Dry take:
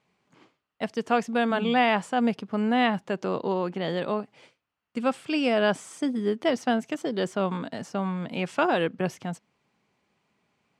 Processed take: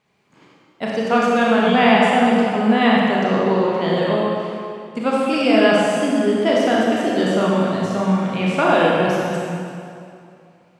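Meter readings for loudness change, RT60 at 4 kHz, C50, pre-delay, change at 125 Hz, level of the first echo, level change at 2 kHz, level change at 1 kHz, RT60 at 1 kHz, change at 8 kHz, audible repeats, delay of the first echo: +9.5 dB, 2.0 s, −2.5 dB, 25 ms, +10.5 dB, no echo audible, +9.5 dB, +9.0 dB, 2.5 s, +8.5 dB, no echo audible, no echo audible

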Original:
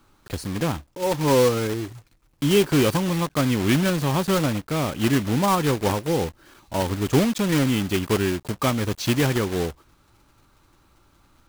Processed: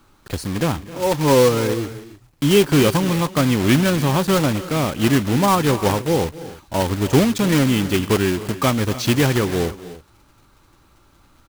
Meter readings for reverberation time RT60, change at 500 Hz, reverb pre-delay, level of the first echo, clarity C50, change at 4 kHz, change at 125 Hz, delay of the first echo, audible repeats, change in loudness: no reverb audible, +4.0 dB, no reverb audible, −18.0 dB, no reverb audible, +4.0 dB, +4.0 dB, 262 ms, 2, +4.0 dB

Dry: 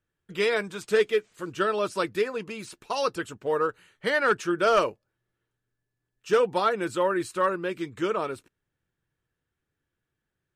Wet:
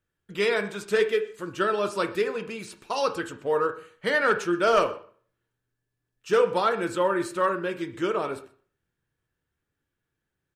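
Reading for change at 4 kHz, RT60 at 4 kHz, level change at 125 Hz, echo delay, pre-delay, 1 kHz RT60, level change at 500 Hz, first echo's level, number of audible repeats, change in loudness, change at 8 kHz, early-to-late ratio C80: +0.5 dB, 0.40 s, +0.5 dB, 125 ms, 7 ms, 0.45 s, +0.5 dB, −22.0 dB, 1, +0.5 dB, 0.0 dB, 16.0 dB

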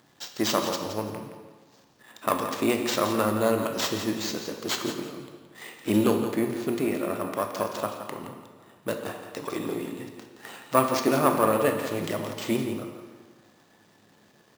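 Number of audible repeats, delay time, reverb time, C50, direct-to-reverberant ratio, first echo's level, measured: 2, 170 ms, 1.5 s, 5.0 dB, 3.5 dB, −10.0 dB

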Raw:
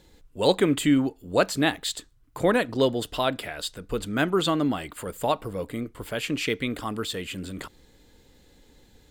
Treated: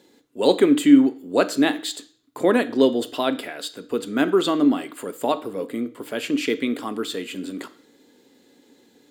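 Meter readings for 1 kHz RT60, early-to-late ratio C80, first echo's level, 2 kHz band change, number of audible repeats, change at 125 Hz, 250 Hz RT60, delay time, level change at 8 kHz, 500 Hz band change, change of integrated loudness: 0.50 s, 21.0 dB, no echo audible, +0.5 dB, no echo audible, −7.0 dB, 0.50 s, no echo audible, 0.0 dB, +4.0 dB, +4.5 dB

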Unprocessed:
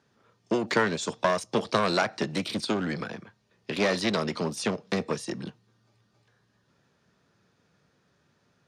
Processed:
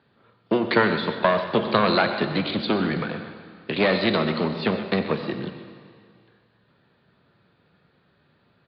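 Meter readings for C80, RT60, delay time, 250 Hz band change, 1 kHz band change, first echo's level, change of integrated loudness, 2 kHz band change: 8.0 dB, 2.2 s, 93 ms, +5.5 dB, +5.0 dB, −16.5 dB, +5.0 dB, +5.5 dB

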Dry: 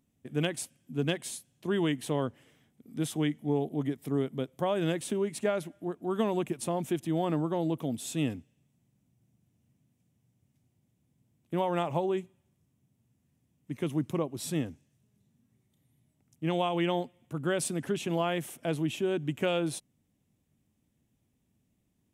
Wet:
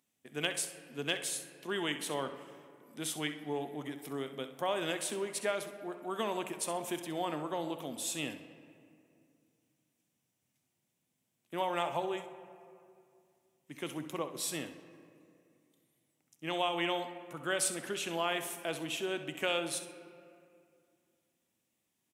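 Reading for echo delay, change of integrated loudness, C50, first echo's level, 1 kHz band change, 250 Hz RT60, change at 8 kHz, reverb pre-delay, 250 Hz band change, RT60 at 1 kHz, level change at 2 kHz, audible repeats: 65 ms, −4.5 dB, 9.0 dB, −12.0 dB, −1.5 dB, 2.8 s, +3.0 dB, 5 ms, −9.5 dB, 2.3 s, +1.5 dB, 1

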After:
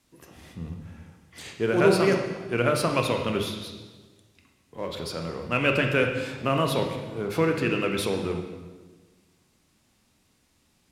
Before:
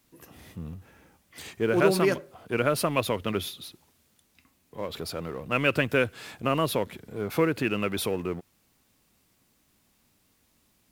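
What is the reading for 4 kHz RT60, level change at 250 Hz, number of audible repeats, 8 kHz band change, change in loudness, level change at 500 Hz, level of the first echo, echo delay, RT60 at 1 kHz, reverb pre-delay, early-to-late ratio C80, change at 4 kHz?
1.2 s, +2.0 dB, no echo audible, −0.5 dB, +2.0 dB, +2.0 dB, no echo audible, no echo audible, 1.2 s, 18 ms, 7.0 dB, +2.0 dB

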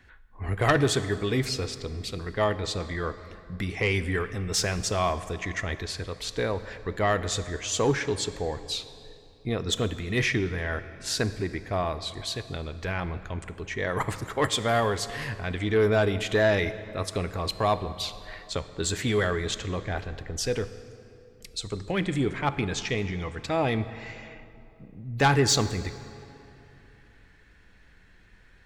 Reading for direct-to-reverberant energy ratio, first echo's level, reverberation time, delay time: 12.0 dB, no echo audible, 2.8 s, no echo audible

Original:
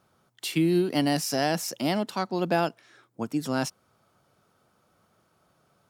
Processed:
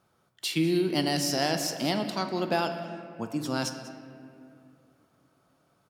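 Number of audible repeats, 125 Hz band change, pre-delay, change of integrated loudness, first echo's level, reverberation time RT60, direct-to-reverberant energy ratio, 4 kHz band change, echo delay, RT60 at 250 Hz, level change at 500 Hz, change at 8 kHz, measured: 1, −2.0 dB, 6 ms, −1.5 dB, −17.5 dB, 2.5 s, 5.5 dB, +2.5 dB, 194 ms, 2.9 s, −2.0 dB, +0.5 dB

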